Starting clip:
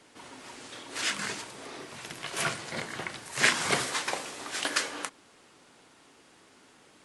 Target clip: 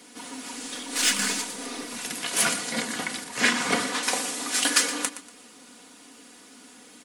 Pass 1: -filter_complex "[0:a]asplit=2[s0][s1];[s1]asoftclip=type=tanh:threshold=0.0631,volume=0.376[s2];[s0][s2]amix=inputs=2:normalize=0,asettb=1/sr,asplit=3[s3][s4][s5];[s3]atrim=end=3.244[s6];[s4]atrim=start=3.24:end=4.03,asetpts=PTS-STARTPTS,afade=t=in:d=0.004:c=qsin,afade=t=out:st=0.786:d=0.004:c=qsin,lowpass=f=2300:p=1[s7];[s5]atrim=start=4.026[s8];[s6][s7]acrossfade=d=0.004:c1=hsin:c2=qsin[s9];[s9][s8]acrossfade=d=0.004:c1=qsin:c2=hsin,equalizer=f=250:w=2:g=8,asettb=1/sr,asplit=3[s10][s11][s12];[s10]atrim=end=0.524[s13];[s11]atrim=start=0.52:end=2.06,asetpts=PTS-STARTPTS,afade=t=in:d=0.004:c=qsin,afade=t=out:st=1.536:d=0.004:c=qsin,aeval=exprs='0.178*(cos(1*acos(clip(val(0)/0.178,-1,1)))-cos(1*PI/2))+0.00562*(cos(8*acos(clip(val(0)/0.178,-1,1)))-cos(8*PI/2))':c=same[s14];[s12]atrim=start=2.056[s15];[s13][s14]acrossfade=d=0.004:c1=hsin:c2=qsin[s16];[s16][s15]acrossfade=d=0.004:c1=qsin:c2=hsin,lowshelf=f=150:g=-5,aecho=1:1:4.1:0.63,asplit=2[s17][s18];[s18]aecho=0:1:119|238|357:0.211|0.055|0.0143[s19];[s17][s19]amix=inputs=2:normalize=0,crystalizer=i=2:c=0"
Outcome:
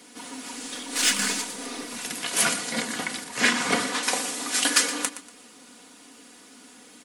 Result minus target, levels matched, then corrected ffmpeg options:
saturation: distortion -4 dB
-filter_complex "[0:a]asplit=2[s0][s1];[s1]asoftclip=type=tanh:threshold=0.0282,volume=0.376[s2];[s0][s2]amix=inputs=2:normalize=0,asettb=1/sr,asplit=3[s3][s4][s5];[s3]atrim=end=3.244[s6];[s4]atrim=start=3.24:end=4.03,asetpts=PTS-STARTPTS,afade=t=in:d=0.004:c=qsin,afade=t=out:st=0.786:d=0.004:c=qsin,lowpass=f=2300:p=1[s7];[s5]atrim=start=4.026[s8];[s6][s7]acrossfade=d=0.004:c1=hsin:c2=qsin[s9];[s9][s8]acrossfade=d=0.004:c1=qsin:c2=hsin,equalizer=f=250:w=2:g=8,asettb=1/sr,asplit=3[s10][s11][s12];[s10]atrim=end=0.524[s13];[s11]atrim=start=0.52:end=2.06,asetpts=PTS-STARTPTS,afade=t=in:d=0.004:c=qsin,afade=t=out:st=1.536:d=0.004:c=qsin,aeval=exprs='0.178*(cos(1*acos(clip(val(0)/0.178,-1,1)))-cos(1*PI/2))+0.00562*(cos(8*acos(clip(val(0)/0.178,-1,1)))-cos(8*PI/2))':c=same[s14];[s12]atrim=start=2.056[s15];[s13][s14]acrossfade=d=0.004:c1=hsin:c2=qsin[s16];[s16][s15]acrossfade=d=0.004:c1=qsin:c2=hsin,lowshelf=f=150:g=-5,aecho=1:1:4.1:0.63,asplit=2[s17][s18];[s18]aecho=0:1:119|238|357:0.211|0.055|0.0143[s19];[s17][s19]amix=inputs=2:normalize=0,crystalizer=i=2:c=0"

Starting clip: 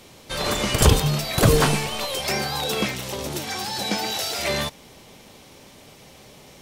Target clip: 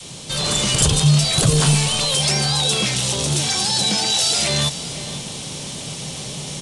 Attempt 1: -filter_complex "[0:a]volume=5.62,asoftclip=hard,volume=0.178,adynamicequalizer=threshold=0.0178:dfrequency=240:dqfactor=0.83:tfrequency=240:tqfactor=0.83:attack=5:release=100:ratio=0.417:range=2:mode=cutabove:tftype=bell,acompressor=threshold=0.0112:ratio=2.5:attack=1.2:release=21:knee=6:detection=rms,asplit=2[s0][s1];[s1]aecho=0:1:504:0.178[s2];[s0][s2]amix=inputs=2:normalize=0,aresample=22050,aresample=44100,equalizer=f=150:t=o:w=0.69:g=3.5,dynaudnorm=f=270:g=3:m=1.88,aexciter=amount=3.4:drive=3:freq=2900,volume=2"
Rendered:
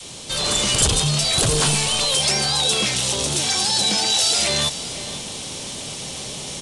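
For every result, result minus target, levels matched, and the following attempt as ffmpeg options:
overload inside the chain: distortion +25 dB; 125 Hz band -7.0 dB
-filter_complex "[0:a]volume=1.68,asoftclip=hard,volume=0.596,adynamicequalizer=threshold=0.0178:dfrequency=240:dqfactor=0.83:tfrequency=240:tqfactor=0.83:attack=5:release=100:ratio=0.417:range=2:mode=cutabove:tftype=bell,acompressor=threshold=0.0112:ratio=2.5:attack=1.2:release=21:knee=6:detection=rms,asplit=2[s0][s1];[s1]aecho=0:1:504:0.178[s2];[s0][s2]amix=inputs=2:normalize=0,aresample=22050,aresample=44100,equalizer=f=150:t=o:w=0.69:g=3.5,dynaudnorm=f=270:g=3:m=1.88,aexciter=amount=3.4:drive=3:freq=2900,volume=2"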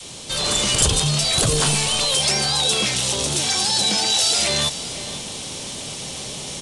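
125 Hz band -6.5 dB
-filter_complex "[0:a]volume=1.68,asoftclip=hard,volume=0.596,adynamicequalizer=threshold=0.0178:dfrequency=240:dqfactor=0.83:tfrequency=240:tqfactor=0.83:attack=5:release=100:ratio=0.417:range=2:mode=cutabove:tftype=bell,acompressor=threshold=0.0112:ratio=2.5:attack=1.2:release=21:knee=6:detection=rms,asplit=2[s0][s1];[s1]aecho=0:1:504:0.178[s2];[s0][s2]amix=inputs=2:normalize=0,aresample=22050,aresample=44100,equalizer=f=150:t=o:w=0.69:g=12.5,dynaudnorm=f=270:g=3:m=1.88,aexciter=amount=3.4:drive=3:freq=2900,volume=2"

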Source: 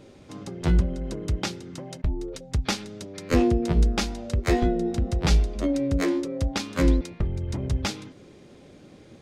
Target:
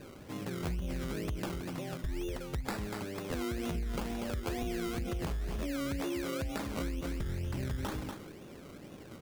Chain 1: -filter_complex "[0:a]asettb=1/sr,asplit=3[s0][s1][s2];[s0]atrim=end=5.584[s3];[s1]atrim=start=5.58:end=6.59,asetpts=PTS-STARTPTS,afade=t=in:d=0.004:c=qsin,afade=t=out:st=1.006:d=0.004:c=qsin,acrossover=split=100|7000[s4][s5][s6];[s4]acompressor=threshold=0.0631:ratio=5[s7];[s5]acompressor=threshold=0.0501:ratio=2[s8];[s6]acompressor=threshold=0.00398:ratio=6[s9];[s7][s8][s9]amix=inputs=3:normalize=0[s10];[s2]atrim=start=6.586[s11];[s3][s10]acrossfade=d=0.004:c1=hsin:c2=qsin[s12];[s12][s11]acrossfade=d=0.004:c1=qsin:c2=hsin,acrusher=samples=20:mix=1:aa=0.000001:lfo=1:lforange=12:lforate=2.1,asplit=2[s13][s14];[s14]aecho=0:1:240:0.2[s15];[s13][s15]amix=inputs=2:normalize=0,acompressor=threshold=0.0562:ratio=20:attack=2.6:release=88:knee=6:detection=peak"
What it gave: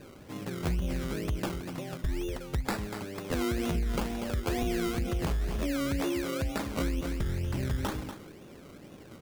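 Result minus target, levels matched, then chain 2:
compression: peak gain reduction -5.5 dB
-filter_complex "[0:a]asettb=1/sr,asplit=3[s0][s1][s2];[s0]atrim=end=5.584[s3];[s1]atrim=start=5.58:end=6.59,asetpts=PTS-STARTPTS,afade=t=in:d=0.004:c=qsin,afade=t=out:st=1.006:d=0.004:c=qsin,acrossover=split=100|7000[s4][s5][s6];[s4]acompressor=threshold=0.0631:ratio=5[s7];[s5]acompressor=threshold=0.0501:ratio=2[s8];[s6]acompressor=threshold=0.00398:ratio=6[s9];[s7][s8][s9]amix=inputs=3:normalize=0[s10];[s2]atrim=start=6.586[s11];[s3][s10]acrossfade=d=0.004:c1=hsin:c2=qsin[s12];[s12][s11]acrossfade=d=0.004:c1=qsin:c2=hsin,acrusher=samples=20:mix=1:aa=0.000001:lfo=1:lforange=12:lforate=2.1,asplit=2[s13][s14];[s14]aecho=0:1:240:0.2[s15];[s13][s15]amix=inputs=2:normalize=0,acompressor=threshold=0.0282:ratio=20:attack=2.6:release=88:knee=6:detection=peak"

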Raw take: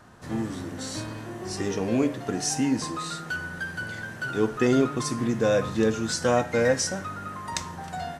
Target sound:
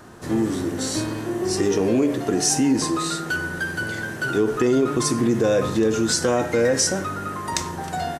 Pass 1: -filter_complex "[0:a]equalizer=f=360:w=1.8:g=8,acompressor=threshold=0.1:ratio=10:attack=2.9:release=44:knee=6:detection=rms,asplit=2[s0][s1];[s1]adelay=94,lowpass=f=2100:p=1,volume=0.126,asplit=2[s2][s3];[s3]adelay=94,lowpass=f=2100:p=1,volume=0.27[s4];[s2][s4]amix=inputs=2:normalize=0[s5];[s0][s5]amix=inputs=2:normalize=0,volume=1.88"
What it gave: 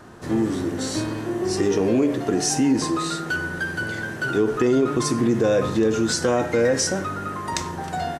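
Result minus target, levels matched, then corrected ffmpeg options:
8 kHz band -3.0 dB
-filter_complex "[0:a]equalizer=f=360:w=1.8:g=8,acompressor=threshold=0.1:ratio=10:attack=2.9:release=44:knee=6:detection=rms,highshelf=f=7400:g=7.5,asplit=2[s0][s1];[s1]adelay=94,lowpass=f=2100:p=1,volume=0.126,asplit=2[s2][s3];[s3]adelay=94,lowpass=f=2100:p=1,volume=0.27[s4];[s2][s4]amix=inputs=2:normalize=0[s5];[s0][s5]amix=inputs=2:normalize=0,volume=1.88"

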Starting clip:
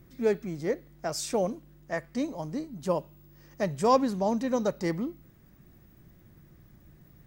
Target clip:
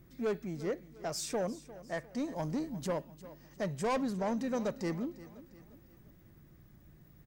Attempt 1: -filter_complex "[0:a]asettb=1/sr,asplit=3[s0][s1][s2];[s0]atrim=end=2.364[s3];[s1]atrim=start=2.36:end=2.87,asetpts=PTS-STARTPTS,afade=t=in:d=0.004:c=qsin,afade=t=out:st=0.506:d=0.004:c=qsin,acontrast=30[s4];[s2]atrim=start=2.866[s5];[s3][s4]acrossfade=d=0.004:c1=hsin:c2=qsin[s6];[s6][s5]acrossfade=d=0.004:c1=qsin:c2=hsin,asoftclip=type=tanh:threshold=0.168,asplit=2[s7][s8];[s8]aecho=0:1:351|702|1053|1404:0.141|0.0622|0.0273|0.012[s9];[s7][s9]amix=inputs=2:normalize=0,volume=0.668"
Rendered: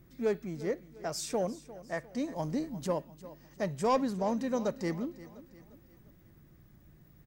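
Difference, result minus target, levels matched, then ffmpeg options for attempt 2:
saturation: distortion -10 dB
-filter_complex "[0:a]asettb=1/sr,asplit=3[s0][s1][s2];[s0]atrim=end=2.364[s3];[s1]atrim=start=2.36:end=2.87,asetpts=PTS-STARTPTS,afade=t=in:d=0.004:c=qsin,afade=t=out:st=0.506:d=0.004:c=qsin,acontrast=30[s4];[s2]atrim=start=2.866[s5];[s3][s4]acrossfade=d=0.004:c1=hsin:c2=qsin[s6];[s6][s5]acrossfade=d=0.004:c1=qsin:c2=hsin,asoftclip=type=tanh:threshold=0.0631,asplit=2[s7][s8];[s8]aecho=0:1:351|702|1053|1404:0.141|0.0622|0.0273|0.012[s9];[s7][s9]amix=inputs=2:normalize=0,volume=0.668"

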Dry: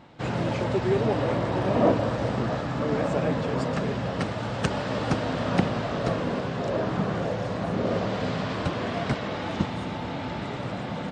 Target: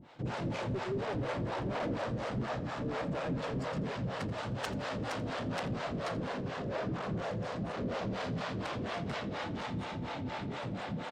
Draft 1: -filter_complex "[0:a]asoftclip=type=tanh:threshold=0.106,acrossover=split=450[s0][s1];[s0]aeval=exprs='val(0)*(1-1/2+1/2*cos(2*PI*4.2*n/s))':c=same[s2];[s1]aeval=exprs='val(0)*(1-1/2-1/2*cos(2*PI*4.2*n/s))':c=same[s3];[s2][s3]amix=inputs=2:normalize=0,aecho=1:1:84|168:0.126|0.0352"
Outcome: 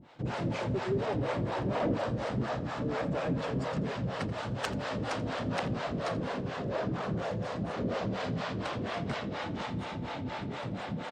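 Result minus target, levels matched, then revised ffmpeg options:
saturation: distortion -6 dB
-filter_complex "[0:a]asoftclip=type=tanh:threshold=0.0447,acrossover=split=450[s0][s1];[s0]aeval=exprs='val(0)*(1-1/2+1/2*cos(2*PI*4.2*n/s))':c=same[s2];[s1]aeval=exprs='val(0)*(1-1/2-1/2*cos(2*PI*4.2*n/s))':c=same[s3];[s2][s3]amix=inputs=2:normalize=0,aecho=1:1:84|168:0.126|0.0352"

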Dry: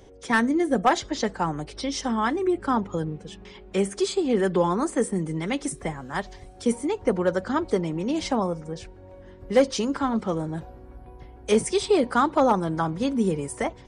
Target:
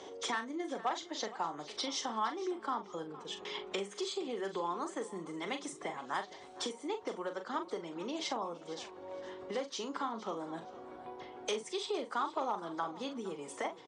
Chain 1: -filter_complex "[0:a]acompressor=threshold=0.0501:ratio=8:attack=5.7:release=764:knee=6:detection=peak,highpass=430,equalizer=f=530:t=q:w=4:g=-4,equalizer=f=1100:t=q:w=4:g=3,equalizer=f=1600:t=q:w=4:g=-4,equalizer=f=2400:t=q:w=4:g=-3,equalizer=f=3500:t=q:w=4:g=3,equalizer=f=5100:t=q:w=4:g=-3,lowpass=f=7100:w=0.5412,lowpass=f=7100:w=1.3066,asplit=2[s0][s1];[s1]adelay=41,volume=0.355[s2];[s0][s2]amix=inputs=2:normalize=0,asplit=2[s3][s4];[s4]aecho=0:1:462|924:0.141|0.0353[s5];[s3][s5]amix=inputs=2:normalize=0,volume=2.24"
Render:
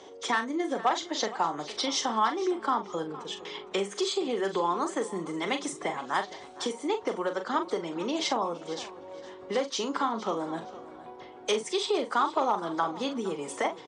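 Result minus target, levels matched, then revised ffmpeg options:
compression: peak gain reduction -9 dB
-filter_complex "[0:a]acompressor=threshold=0.0158:ratio=8:attack=5.7:release=764:knee=6:detection=peak,highpass=430,equalizer=f=530:t=q:w=4:g=-4,equalizer=f=1100:t=q:w=4:g=3,equalizer=f=1600:t=q:w=4:g=-4,equalizer=f=2400:t=q:w=4:g=-3,equalizer=f=3500:t=q:w=4:g=3,equalizer=f=5100:t=q:w=4:g=-3,lowpass=f=7100:w=0.5412,lowpass=f=7100:w=1.3066,asplit=2[s0][s1];[s1]adelay=41,volume=0.355[s2];[s0][s2]amix=inputs=2:normalize=0,asplit=2[s3][s4];[s4]aecho=0:1:462|924:0.141|0.0353[s5];[s3][s5]amix=inputs=2:normalize=0,volume=2.24"

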